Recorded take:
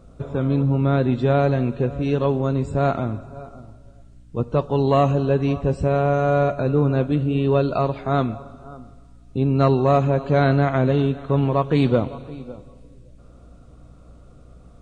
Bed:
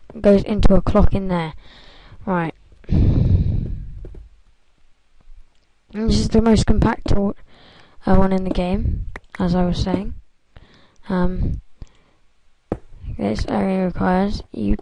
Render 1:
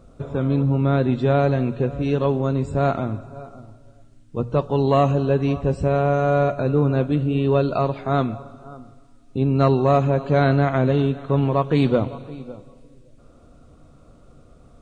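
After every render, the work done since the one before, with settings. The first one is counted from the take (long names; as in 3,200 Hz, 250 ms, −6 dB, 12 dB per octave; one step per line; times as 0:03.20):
hum removal 60 Hz, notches 3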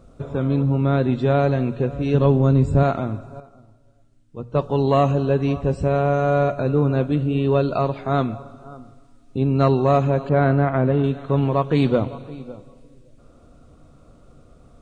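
0:02.14–0:02.83: low-shelf EQ 260 Hz +9.5 dB
0:03.40–0:04.55: clip gain −8 dB
0:10.29–0:11.04: low-pass filter 2,000 Hz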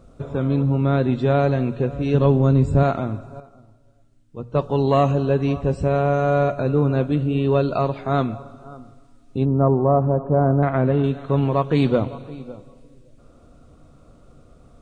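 0:09.45–0:10.63: low-pass filter 1,100 Hz 24 dB per octave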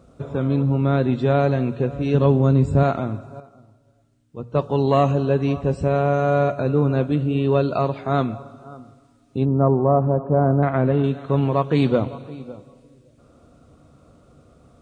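high-pass filter 66 Hz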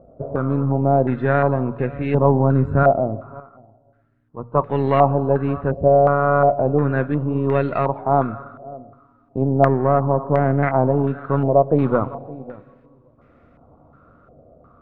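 gain on one half-wave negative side −3 dB
low-pass on a step sequencer 2.8 Hz 640–2,000 Hz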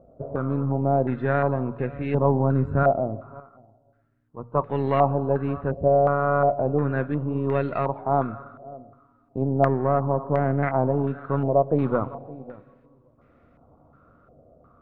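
level −5 dB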